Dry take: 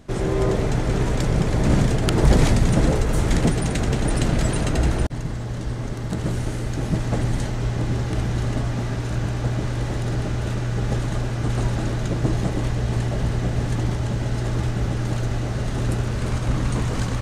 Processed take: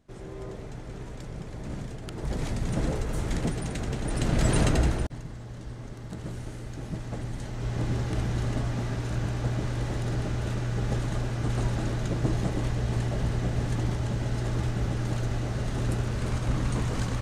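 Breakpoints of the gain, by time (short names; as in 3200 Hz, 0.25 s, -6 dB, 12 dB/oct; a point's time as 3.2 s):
2.15 s -18 dB
2.8 s -9.5 dB
4.04 s -9.5 dB
4.61 s +0.5 dB
5.27 s -12 dB
7.38 s -12 dB
7.8 s -5 dB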